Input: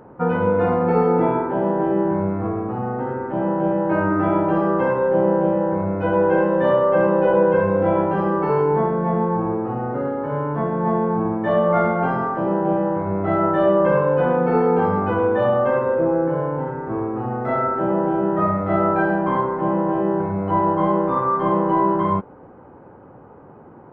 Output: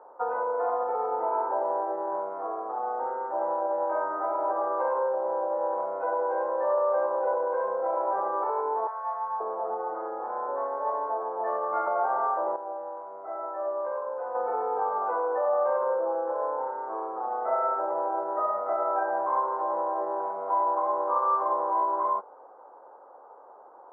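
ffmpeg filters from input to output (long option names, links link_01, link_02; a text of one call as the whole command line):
ffmpeg -i in.wav -filter_complex "[0:a]asettb=1/sr,asplit=3[link_01][link_02][link_03];[link_01]atrim=end=8.874[link_04];[link_02]atrim=start=8.87:end=11.87,asetpts=PTS-STARTPTS,afade=type=in:duration=0.004:curve=qsin,afade=type=out:start_time=2.996:duration=0.004:curve=qsin,acrossover=split=150|800[link_05][link_06][link_07];[link_05]adelay=250[link_08];[link_06]adelay=530[link_09];[link_08][link_09][link_07]amix=inputs=3:normalize=0,atrim=end_sample=132300[link_10];[link_03]atrim=start=11.866[link_11];[link_04][link_10]acrossfade=duration=0.004:curve1=hsin:curve2=qsin[link_12];[link_12][link_11]acrossfade=duration=0.004:curve1=qsin:curve2=hsin,asplit=3[link_13][link_14][link_15];[link_13]atrim=end=12.562[link_16];[link_14]atrim=start=12.558:end=14.352,asetpts=PTS-STARTPTS,volume=-10.5dB[link_17];[link_15]atrim=start=14.348[link_18];[link_16][link_17]acrossfade=duration=0.004:curve1=hsin:curve2=hsin[link_19];[link_19][link_18]acrossfade=duration=0.004:curve1=hsin:curve2=hsin,lowpass=frequency=1200:width=0.5412,lowpass=frequency=1200:width=1.3066,alimiter=limit=-14.5dB:level=0:latency=1:release=53,highpass=frequency=580:width=0.5412,highpass=frequency=580:width=1.3066" out.wav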